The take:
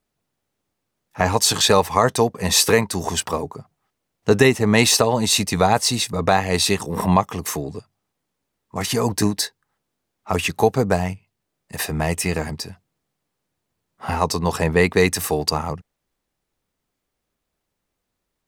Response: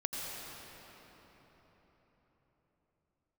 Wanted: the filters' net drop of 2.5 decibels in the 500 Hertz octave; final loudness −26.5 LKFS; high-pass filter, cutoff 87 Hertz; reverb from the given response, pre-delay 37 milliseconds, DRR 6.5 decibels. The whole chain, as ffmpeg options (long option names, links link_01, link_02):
-filter_complex "[0:a]highpass=87,equalizer=frequency=500:width_type=o:gain=-3,asplit=2[link_01][link_02];[1:a]atrim=start_sample=2205,adelay=37[link_03];[link_02][link_03]afir=irnorm=-1:irlink=0,volume=-10.5dB[link_04];[link_01][link_04]amix=inputs=2:normalize=0,volume=-6.5dB"